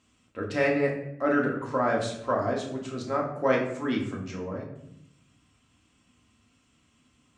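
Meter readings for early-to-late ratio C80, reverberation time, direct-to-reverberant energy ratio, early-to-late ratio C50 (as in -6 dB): 9.0 dB, 0.75 s, -2.0 dB, 6.0 dB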